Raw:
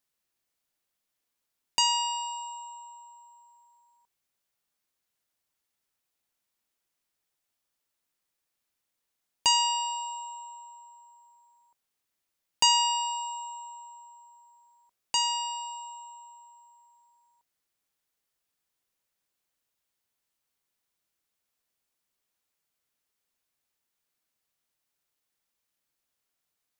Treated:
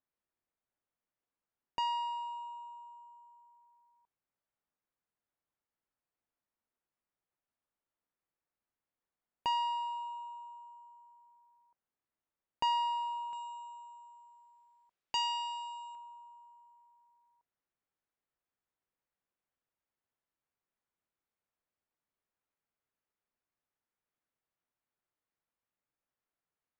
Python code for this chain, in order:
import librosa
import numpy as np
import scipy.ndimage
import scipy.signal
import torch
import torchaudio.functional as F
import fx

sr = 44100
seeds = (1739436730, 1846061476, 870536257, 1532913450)

y = fx.lowpass(x, sr, hz=fx.steps((0.0, 1600.0), (13.33, 3500.0), (15.95, 1800.0)), slope=12)
y = F.gain(torch.from_numpy(y), -4.0).numpy()